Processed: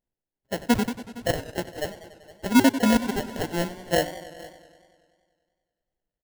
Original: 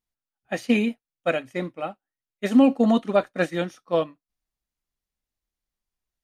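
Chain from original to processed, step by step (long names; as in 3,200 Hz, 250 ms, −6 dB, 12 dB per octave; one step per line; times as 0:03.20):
time-frequency cells dropped at random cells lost 31%
sample-rate reduction 1,200 Hz, jitter 0%
single-tap delay 462 ms −21 dB
feedback echo with a swinging delay time 96 ms, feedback 71%, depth 94 cents, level −15 dB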